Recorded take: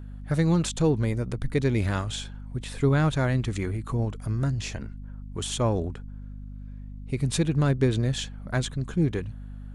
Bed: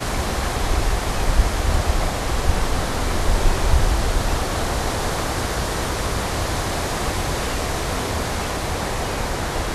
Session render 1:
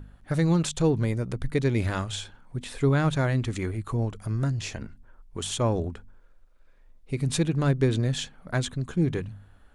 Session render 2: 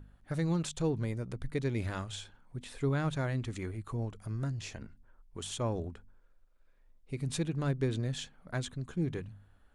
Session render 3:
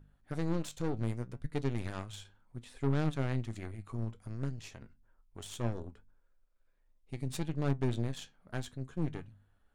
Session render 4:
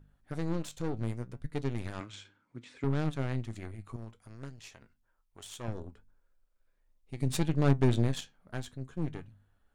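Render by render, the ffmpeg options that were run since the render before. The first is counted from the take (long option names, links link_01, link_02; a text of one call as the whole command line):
ffmpeg -i in.wav -af "bandreject=frequency=50:width_type=h:width=4,bandreject=frequency=100:width_type=h:width=4,bandreject=frequency=150:width_type=h:width=4,bandreject=frequency=200:width_type=h:width=4,bandreject=frequency=250:width_type=h:width=4" out.wav
ffmpeg -i in.wav -af "volume=-8.5dB" out.wav
ffmpeg -i in.wav -af "aeval=exprs='0.0944*(cos(1*acos(clip(val(0)/0.0944,-1,1)))-cos(1*PI/2))+0.0211*(cos(4*acos(clip(val(0)/0.0944,-1,1)))-cos(4*PI/2))+0.00335*(cos(7*acos(clip(val(0)/0.0944,-1,1)))-cos(7*PI/2))':channel_layout=same,flanger=delay=6.4:depth=4:regen=71:speed=0.66:shape=triangular" out.wav
ffmpeg -i in.wav -filter_complex "[0:a]asettb=1/sr,asplit=3[link_01][link_02][link_03];[link_01]atrim=end=2.004[link_04];[link_02]atrim=start=2:end=2.84,asetpts=PTS-STARTPTS,afade=type=in:duration=0.004:curve=qsin,afade=type=out:start_time=0.836:duration=0.004:curve=qsin,highpass=130,equalizer=frequency=300:width_type=q:width=4:gain=9,equalizer=frequency=750:width_type=q:width=4:gain=-6,equalizer=frequency=1400:width_type=q:width=4:gain=4,equalizer=frequency=2200:width_type=q:width=4:gain=8,lowpass=frequency=7400:width=0.5412,lowpass=frequency=7400:width=1.3066[link_05];[link_03]atrim=start=2.836[link_06];[link_04][link_05]acrossfade=duration=0.004:curve1=hsin:curve2=qsin[link_07];[link_07][link_06]acrossfade=duration=0.004:curve1=qsin:curve2=hsin,asettb=1/sr,asplit=3[link_08][link_09][link_10];[link_08]atrim=end=3.964[link_11];[link_09]atrim=start=3.96:end=5.68,asetpts=PTS-STARTPTS,afade=type=in:duration=0.004:curve=qsin,afade=type=out:start_time=1.716:duration=0.004:curve=qsin,lowshelf=frequency=440:gain=-9.5[link_12];[link_10]atrim=start=5.676[link_13];[link_11][link_12]acrossfade=duration=0.004:curve1=hsin:curve2=qsin[link_14];[link_14][link_13]acrossfade=duration=0.004:curve1=qsin:curve2=hsin,asettb=1/sr,asplit=3[link_15][link_16][link_17];[link_15]atrim=end=7.204[link_18];[link_16]atrim=start=7.2:end=8.21,asetpts=PTS-STARTPTS,afade=type=in:duration=0.004:curve=qsin,afade=type=out:start_time=1.006:duration=0.004:curve=qsin,acontrast=71[link_19];[link_17]atrim=start=8.206[link_20];[link_18][link_19]acrossfade=duration=0.004:curve1=hsin:curve2=qsin[link_21];[link_21][link_20]acrossfade=duration=0.004:curve1=qsin:curve2=hsin" out.wav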